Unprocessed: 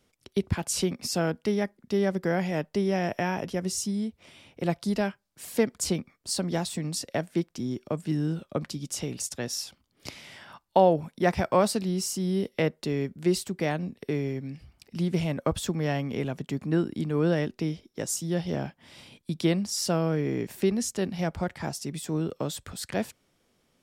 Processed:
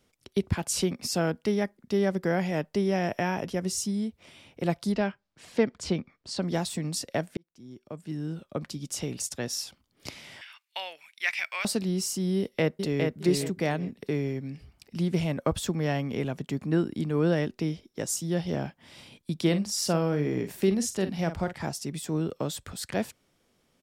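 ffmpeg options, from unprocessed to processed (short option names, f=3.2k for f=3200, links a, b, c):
-filter_complex "[0:a]asettb=1/sr,asplit=3[a][b][c];[a]atrim=end=4.924[d];[b]atrim=start=4.92:end=6.42,asetpts=PTS-STARTPTS,afade=t=in:d=0.004:c=qsin,afade=t=out:st=1.496:d=0.004:c=qsin,lowpass=4.3k[e];[c]atrim=start=6.416[f];[d][e]acrossfade=d=0.004:c1=hsin:c2=qsin[g];[g][f]acrossfade=d=0.004:c1=qsin:c2=hsin,asettb=1/sr,asplit=3[h][i][j];[h]atrim=end=10.414[k];[i]atrim=start=10.41:end=11.65,asetpts=PTS-STARTPTS,afade=t=in:d=0.004:c=qsin,afade=t=out:st=1.236:d=0.004:c=qsin,highpass=f=2.3k:t=q:w=4[l];[j]atrim=start=11.646[m];[k][l]acrossfade=d=0.004:c1=hsin:c2=qsin[n];[n][m]acrossfade=d=0.004:c1=qsin:c2=hsin,asplit=2[o][p];[p]afade=t=in:st=12.38:d=0.01,afade=t=out:st=13.18:d=0.01,aecho=0:1:410|820|1230|1640:0.668344|0.167086|0.0417715|0.0104429[q];[o][q]amix=inputs=2:normalize=0,asettb=1/sr,asplit=3[r][s][t];[r]atrim=end=19.414[u];[s]atrim=start=19.41:end=21.66,asetpts=PTS-STARTPTS,afade=t=in:d=0.004:c=qsin,afade=t=out:st=2.246:d=0.004:c=qsin,asplit=2[v][w];[w]adelay=47,volume=-11dB[x];[v][x]amix=inputs=2:normalize=0,atrim=end_sample=99225[y];[t]atrim=start=21.656[z];[u][y]acrossfade=d=0.004:c1=hsin:c2=qsin[aa];[aa][z]acrossfade=d=0.004:c1=qsin:c2=hsin,asplit=2[ab][ac];[ab]atrim=end=7.37,asetpts=PTS-STARTPTS,afade=t=out:st=7.366:d=0.004:c=hsin[ad];[ac]atrim=start=7.37,asetpts=PTS-STARTPTS,afade=t=in:d=1.69[ae];[ad][ae]concat=n=2:v=0:a=1"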